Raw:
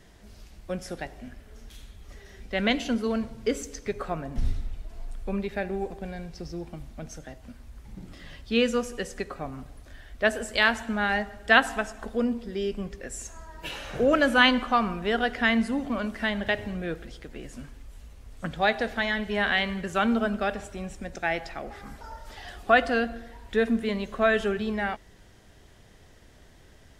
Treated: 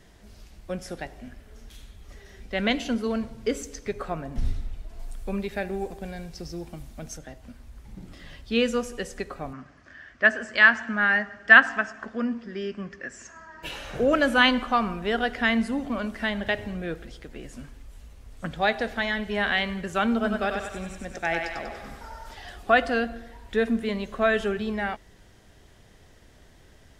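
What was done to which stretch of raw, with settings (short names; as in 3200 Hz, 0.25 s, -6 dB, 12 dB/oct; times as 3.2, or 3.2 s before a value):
4.99–7.17 high shelf 5400 Hz +9 dB
9.53–13.63 speaker cabinet 140–6000 Hz, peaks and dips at 460 Hz -7 dB, 810 Hz -5 dB, 1200 Hz +5 dB, 1700 Hz +9 dB, 3800 Hz -9 dB
20.14–22.34 thinning echo 96 ms, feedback 57%, level -3.5 dB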